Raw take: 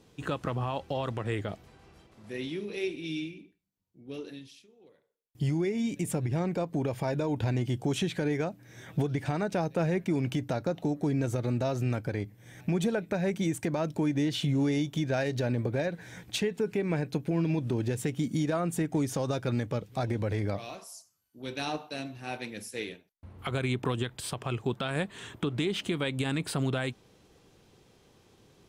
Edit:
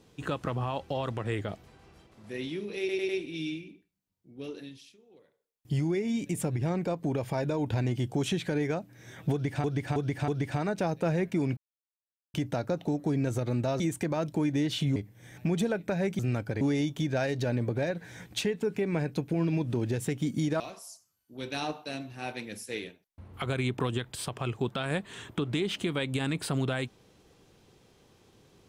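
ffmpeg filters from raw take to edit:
-filter_complex "[0:a]asplit=13[s0][s1][s2][s3][s4][s5][s6][s7][s8][s9][s10][s11][s12];[s0]atrim=end=2.892[s13];[s1]atrim=start=2.788:end=2.892[s14];[s2]atrim=start=2.788:end=2.892[s15];[s3]atrim=start=2.788:end=9.342[s16];[s4]atrim=start=9.018:end=9.342[s17];[s5]atrim=start=9.018:end=9.342[s18];[s6]atrim=start=9.018:end=10.31,asetpts=PTS-STARTPTS,afade=t=out:st=1.288:d=0.004:c=hsin,apad=pad_dur=0.77[s19];[s7]atrim=start=10.31:end=11.772,asetpts=PTS-STARTPTS,afade=t=in:d=0.004:c=hsin[s20];[s8]atrim=start=13.418:end=14.582[s21];[s9]atrim=start=12.188:end=13.422[s22];[s10]atrim=start=11.768:end=12.192[s23];[s11]atrim=start=14.578:end=18.572[s24];[s12]atrim=start=20.648[s25];[s13][s14]acrossfade=d=0.004:c1=hsin:c2=hsin[s26];[s26][s15]acrossfade=d=0.004:c1=hsin:c2=hsin[s27];[s27][s16]acrossfade=d=0.004:c1=hsin:c2=hsin[s28];[s28][s17]acrossfade=d=0.004:c1=hsin:c2=hsin[s29];[s29][s18]acrossfade=d=0.004:c1=hsin:c2=hsin[s30];[s19][s20]concat=n=2:v=0:a=1[s31];[s30][s31]acrossfade=d=0.004:c1=hsin:c2=hsin[s32];[s32][s21]acrossfade=d=0.004:c1=hsin:c2=hsin[s33];[s33][s22]acrossfade=d=0.004:c1=hsin:c2=hsin[s34];[s34][s23]acrossfade=d=0.004:c1=hsin:c2=hsin[s35];[s35][s24]acrossfade=d=0.004:c1=hsin:c2=hsin[s36];[s36][s25]acrossfade=d=0.004:c1=hsin:c2=hsin"

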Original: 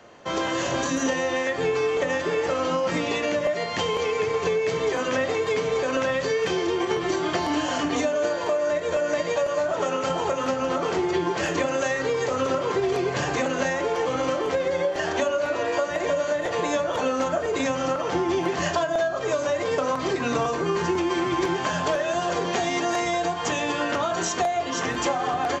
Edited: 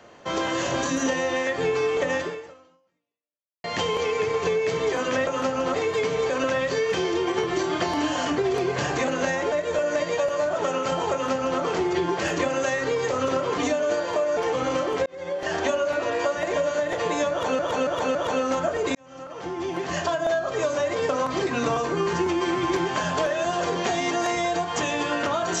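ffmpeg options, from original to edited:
-filter_complex "[0:a]asplit=13[s0][s1][s2][s3][s4][s5][s6][s7][s8][s9][s10][s11][s12];[s0]atrim=end=3.64,asetpts=PTS-STARTPTS,afade=t=out:st=2.21:d=1.43:c=exp[s13];[s1]atrim=start=3.64:end=5.272,asetpts=PTS-STARTPTS,afade=t=in:d=0.004:c=hsin[s14];[s2]atrim=start=10.308:end=10.782[s15];[s3]atrim=start=5.268:end=7.912[s16];[s4]atrim=start=12.758:end=13.902[s17];[s5]atrim=start=8.698:end=12.762[s18];[s6]atrim=start=7.908:end=8.702[s19];[s7]atrim=start=13.898:end=14.59,asetpts=PTS-STARTPTS,afade=t=out:st=0.688:d=0.004:c=hsin[s20];[s8]atrim=start=14.59:end=17.122,asetpts=PTS-STARTPTS,afade=t=in:d=0.47[s21];[s9]atrim=start=16.838:end=17.122[s22];[s10]atrim=start=16.838:end=17.122[s23];[s11]atrim=start=16.838:end=17.64,asetpts=PTS-STARTPTS,afade=t=out:st=0.798:d=0.004:c=hsin[s24];[s12]atrim=start=17.64,asetpts=PTS-STARTPTS,afade=t=in:d=1.33[s25];[s13][s14]concat=n=2:v=0:a=1[s26];[s26][s15]acrossfade=d=0.004:c1=hsin:c2=hsin[s27];[s27][s16]acrossfade=d=0.004:c1=hsin:c2=hsin[s28];[s28][s17]acrossfade=d=0.004:c1=hsin:c2=hsin[s29];[s29][s18]acrossfade=d=0.004:c1=hsin:c2=hsin[s30];[s30][s19]acrossfade=d=0.004:c1=hsin:c2=hsin[s31];[s20][s21]concat=n=2:v=0:a=1[s32];[s31][s32]acrossfade=d=0.004:c1=hsin:c2=hsin[s33];[s33][s22]acrossfade=d=0.004:c1=hsin:c2=hsin[s34];[s34][s23]acrossfade=d=0.004:c1=hsin:c2=hsin[s35];[s24][s25]concat=n=2:v=0:a=1[s36];[s35][s36]acrossfade=d=0.004:c1=hsin:c2=hsin"

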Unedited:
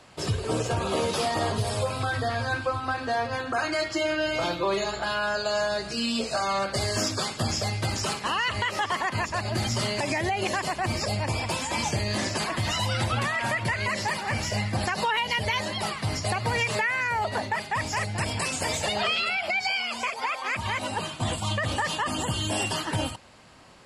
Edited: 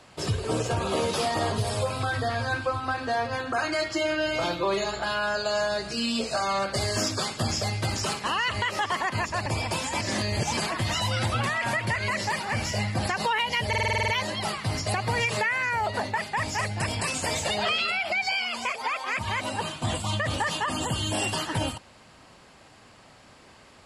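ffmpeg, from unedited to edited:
-filter_complex "[0:a]asplit=12[s0][s1][s2][s3][s4][s5][s6][s7][s8][s9][s10][s11];[s0]atrim=end=9.462[s12];[s1]atrim=start=11.238:end=11.792[s13];[s2]atrim=start=11.788:end=12.352,asetpts=PTS-STARTPTS,areverse[s14];[s3]atrim=start=12.348:end=15.512[s15];[s4]atrim=start=15.458:end=15.512[s16];[s5]atrim=start=15.458:end=15.512[s17];[s6]atrim=start=15.458:end=15.512[s18];[s7]atrim=start=15.458:end=15.512[s19];[s8]atrim=start=15.458:end=15.512[s20];[s9]atrim=start=15.458:end=15.512[s21];[s10]atrim=start=15.458:end=15.512[s22];[s11]atrim=start=15.458[s23];[s12][s13]acrossfade=d=0.004:c1=hsin:c2=hsin[s24];[s24][s14]acrossfade=d=0.004:c1=hsin:c2=hsin[s25];[s25][s15]acrossfade=d=0.004:c1=hsin:c2=hsin[s26];[s26][s16]acrossfade=d=0.004:c1=hsin:c2=hsin[s27];[s27][s17]acrossfade=d=0.004:c1=hsin:c2=hsin[s28];[s28][s18]acrossfade=d=0.004:c1=hsin:c2=hsin[s29];[s29][s19]acrossfade=d=0.004:c1=hsin:c2=hsin[s30];[s30][s20]acrossfade=d=0.004:c1=hsin:c2=hsin[s31];[s31][s21]acrossfade=d=0.004:c1=hsin:c2=hsin[s32];[s32][s22]acrossfade=d=0.004:c1=hsin:c2=hsin[s33];[s33][s23]acrossfade=d=0.004:c1=hsin:c2=hsin"

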